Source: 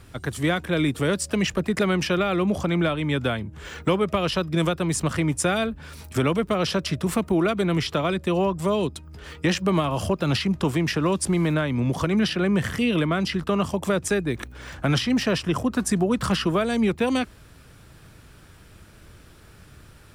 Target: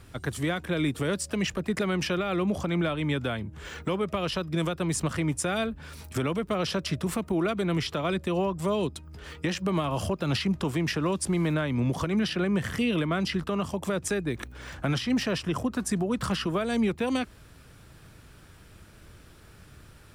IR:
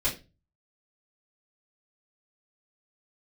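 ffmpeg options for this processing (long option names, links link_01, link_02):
-af "alimiter=limit=-15.5dB:level=0:latency=1:release=191,volume=-2.5dB"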